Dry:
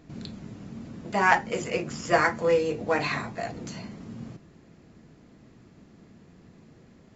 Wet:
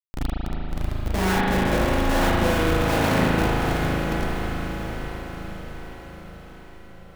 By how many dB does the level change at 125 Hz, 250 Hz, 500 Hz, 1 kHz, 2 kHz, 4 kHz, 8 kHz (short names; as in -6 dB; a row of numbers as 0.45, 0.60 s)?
+13.0 dB, +10.0 dB, +2.5 dB, +2.5 dB, +1.5 dB, +8.5 dB, n/a